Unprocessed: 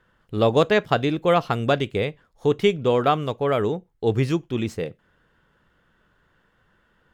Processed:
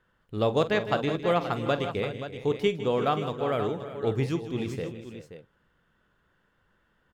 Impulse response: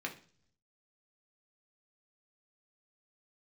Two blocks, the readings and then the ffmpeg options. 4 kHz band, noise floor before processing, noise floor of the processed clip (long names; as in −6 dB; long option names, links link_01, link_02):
−5.5 dB, −65 dBFS, −70 dBFS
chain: -af "aecho=1:1:46|157|332|376|528:0.188|0.211|0.168|0.178|0.282,volume=-6.5dB"